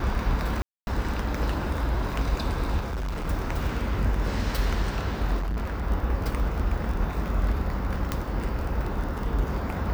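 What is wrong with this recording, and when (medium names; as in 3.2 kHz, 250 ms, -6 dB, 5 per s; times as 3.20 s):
crackle 18 per s -30 dBFS
0.62–0.87 s: dropout 251 ms
2.79–3.28 s: clipped -27 dBFS
5.38–5.87 s: clipped -25 dBFS
8.12 s: pop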